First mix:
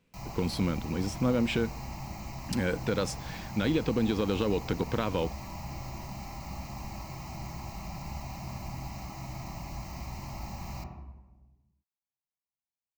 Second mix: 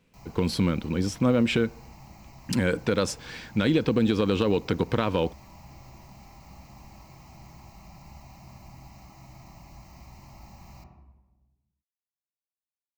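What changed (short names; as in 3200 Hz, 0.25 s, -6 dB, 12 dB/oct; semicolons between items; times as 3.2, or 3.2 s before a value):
speech +5.0 dB; background -8.5 dB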